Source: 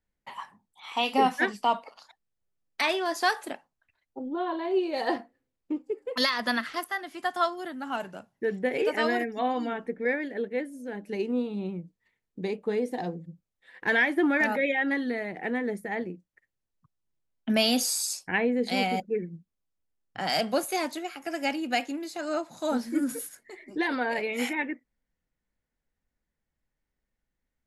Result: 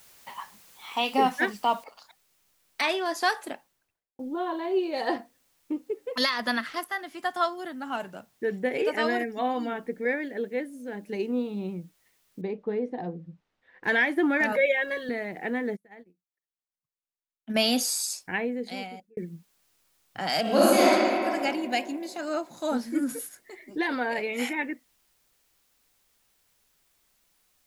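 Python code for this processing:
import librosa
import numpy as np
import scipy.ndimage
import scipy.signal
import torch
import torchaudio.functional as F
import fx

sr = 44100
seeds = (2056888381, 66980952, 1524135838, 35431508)

y = fx.noise_floor_step(x, sr, seeds[0], at_s=1.84, before_db=-55, after_db=-69, tilt_db=0.0)
y = fx.studio_fade_out(y, sr, start_s=3.49, length_s=0.7)
y = fx.spacing_loss(y, sr, db_at_10k=31, at=(12.41, 13.84))
y = fx.comb(y, sr, ms=1.8, depth=0.85, at=(14.52, 15.09))
y = fx.upward_expand(y, sr, threshold_db=-40.0, expansion=2.5, at=(15.75, 17.54), fade=0.02)
y = fx.reverb_throw(y, sr, start_s=20.41, length_s=0.44, rt60_s=2.6, drr_db=-10.0)
y = fx.peak_eq(y, sr, hz=1300.0, db=-11.5, octaves=0.31, at=(21.53, 22.16))
y = fx.edit(y, sr, fx.fade_out_span(start_s=18.04, length_s=1.13), tone=tone)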